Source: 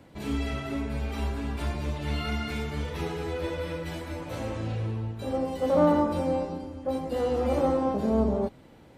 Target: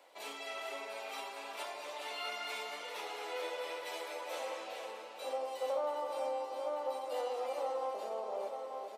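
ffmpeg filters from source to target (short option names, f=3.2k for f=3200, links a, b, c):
-filter_complex "[0:a]asplit=2[a][b];[b]aecho=0:1:890:0.282[c];[a][c]amix=inputs=2:normalize=0,alimiter=limit=-22.5dB:level=0:latency=1:release=394,highpass=f=560:w=0.5412,highpass=f=560:w=1.3066,equalizer=f=1.6k:w=2.8:g=-6,asplit=2[d][e];[e]aecho=0:1:411:0.376[f];[d][f]amix=inputs=2:normalize=0,volume=-1dB"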